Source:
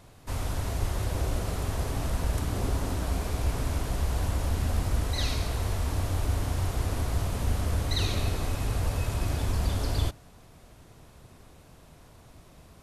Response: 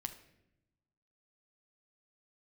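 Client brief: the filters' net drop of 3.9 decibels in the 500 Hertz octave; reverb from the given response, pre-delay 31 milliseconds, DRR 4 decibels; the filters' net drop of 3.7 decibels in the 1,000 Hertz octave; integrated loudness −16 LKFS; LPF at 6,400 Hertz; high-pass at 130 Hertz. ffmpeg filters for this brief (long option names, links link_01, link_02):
-filter_complex "[0:a]highpass=130,lowpass=6400,equalizer=frequency=500:width_type=o:gain=-4,equalizer=frequency=1000:width_type=o:gain=-3.5,asplit=2[link_01][link_02];[1:a]atrim=start_sample=2205,adelay=31[link_03];[link_02][link_03]afir=irnorm=-1:irlink=0,volume=-1.5dB[link_04];[link_01][link_04]amix=inputs=2:normalize=0,volume=18dB"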